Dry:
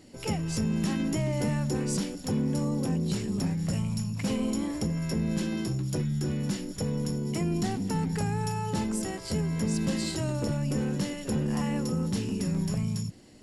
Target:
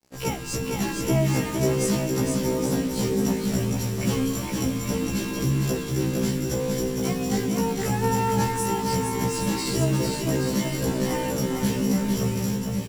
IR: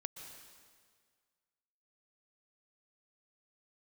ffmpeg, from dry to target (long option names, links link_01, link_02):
-filter_complex "[0:a]asetrate=45938,aresample=44100,acrusher=bits=6:mix=0:aa=0.5,asplit=2[link_01][link_02];[link_02]aecho=0:1:460|828|1122|1358|1546:0.631|0.398|0.251|0.158|0.1[link_03];[link_01][link_03]amix=inputs=2:normalize=0,afftfilt=real='re*1.73*eq(mod(b,3),0)':imag='im*1.73*eq(mod(b,3),0)':win_size=2048:overlap=0.75,volume=7dB"